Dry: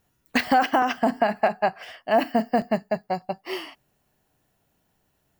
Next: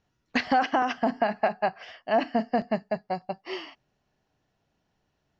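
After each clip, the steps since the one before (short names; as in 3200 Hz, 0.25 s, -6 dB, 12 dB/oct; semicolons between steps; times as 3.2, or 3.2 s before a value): steep low-pass 6300 Hz 48 dB/oct; gain -3.5 dB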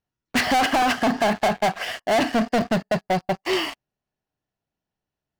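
sample leveller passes 5; gain -2.5 dB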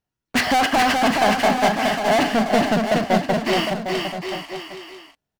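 bouncing-ball echo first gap 0.42 s, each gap 0.8×, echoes 5; gain +1.5 dB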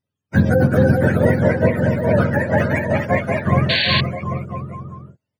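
spectrum mirrored in octaves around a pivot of 630 Hz; painted sound noise, 3.69–4.01, 1500–4600 Hz -21 dBFS; gain +2.5 dB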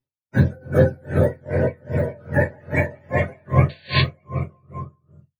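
reverb RT60 0.30 s, pre-delay 4 ms, DRR -5.5 dB; dB-linear tremolo 2.5 Hz, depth 34 dB; gain -6.5 dB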